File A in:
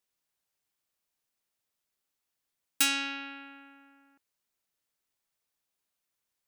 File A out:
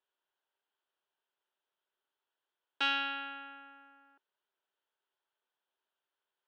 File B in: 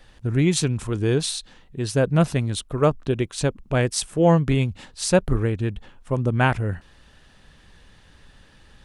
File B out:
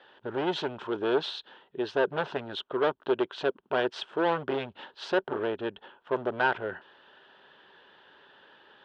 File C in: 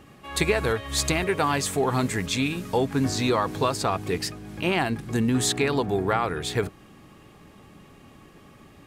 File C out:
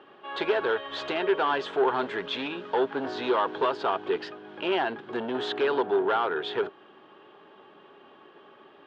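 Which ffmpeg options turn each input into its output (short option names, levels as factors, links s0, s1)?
-af "volume=11.9,asoftclip=hard,volume=0.0841,highpass=370,equalizer=f=390:t=q:w=4:g=10,equalizer=f=610:t=q:w=4:g=4,equalizer=f=920:t=q:w=4:g=8,equalizer=f=1500:t=q:w=4:g=8,equalizer=f=2200:t=q:w=4:g=-6,equalizer=f=3200:t=q:w=4:g=7,lowpass=f=3500:w=0.5412,lowpass=f=3500:w=1.3066,volume=0.708"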